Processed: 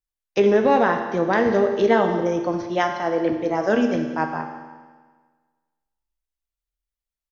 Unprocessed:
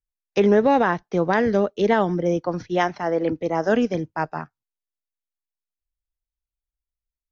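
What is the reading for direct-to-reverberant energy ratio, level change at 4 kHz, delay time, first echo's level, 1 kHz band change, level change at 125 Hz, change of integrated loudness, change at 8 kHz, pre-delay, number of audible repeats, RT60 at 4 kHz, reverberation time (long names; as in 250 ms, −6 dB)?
4.5 dB, +1.0 dB, 188 ms, −17.5 dB, +1.0 dB, −3.0 dB, +1.0 dB, can't be measured, 9 ms, 1, 1.4 s, 1.5 s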